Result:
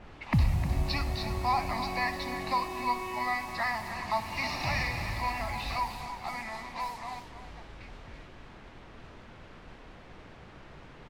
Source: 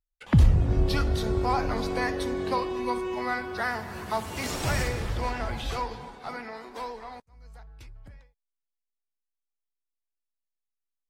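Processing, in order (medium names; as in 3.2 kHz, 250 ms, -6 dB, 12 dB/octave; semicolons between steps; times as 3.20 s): inverse Chebyshev low-pass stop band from 8.1 kHz, stop band 40 dB; tilt EQ +2 dB/octave; static phaser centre 2.2 kHz, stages 8; in parallel at -3 dB: compression, threshold -42 dBFS, peak gain reduction 19 dB; on the sum: added noise pink -48 dBFS; level-controlled noise filter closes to 1.4 kHz, open at -32 dBFS; on a send: delay 308 ms -11 dB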